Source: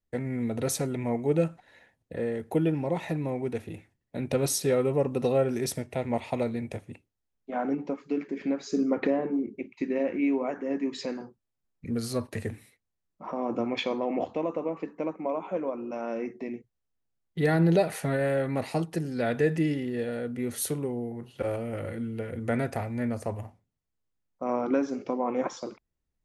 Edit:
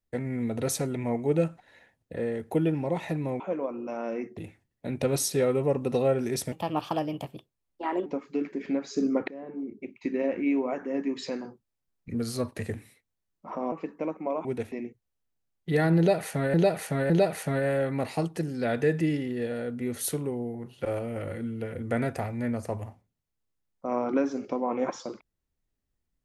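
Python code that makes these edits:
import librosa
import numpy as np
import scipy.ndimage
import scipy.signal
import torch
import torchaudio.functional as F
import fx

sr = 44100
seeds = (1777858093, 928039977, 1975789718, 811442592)

y = fx.edit(x, sr, fx.swap(start_s=3.4, length_s=0.27, other_s=15.44, other_length_s=0.97),
    fx.speed_span(start_s=5.82, length_s=2.0, speed=1.3),
    fx.fade_in_from(start_s=9.04, length_s=0.8, floor_db=-23.5),
    fx.cut(start_s=13.48, length_s=1.23),
    fx.repeat(start_s=17.67, length_s=0.56, count=3), tone=tone)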